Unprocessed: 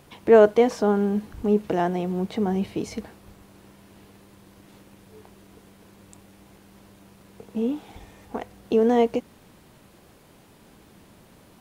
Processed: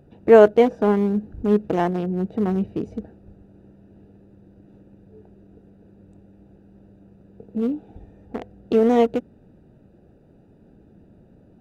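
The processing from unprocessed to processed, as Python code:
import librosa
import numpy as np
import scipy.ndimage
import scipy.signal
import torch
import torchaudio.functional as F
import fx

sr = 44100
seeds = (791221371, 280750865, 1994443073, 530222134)

y = fx.wiener(x, sr, points=41)
y = F.gain(torch.from_numpy(y), 3.0).numpy()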